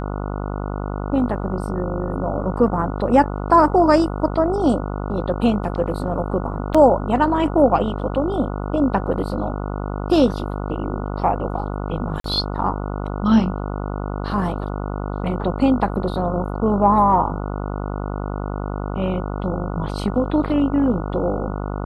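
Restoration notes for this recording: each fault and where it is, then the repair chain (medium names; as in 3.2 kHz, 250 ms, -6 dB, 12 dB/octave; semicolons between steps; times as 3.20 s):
buzz 50 Hz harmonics 29 -26 dBFS
6.74–6.75 s: dropout 5.7 ms
12.20–12.24 s: dropout 43 ms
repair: de-hum 50 Hz, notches 29; interpolate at 6.74 s, 5.7 ms; interpolate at 12.20 s, 43 ms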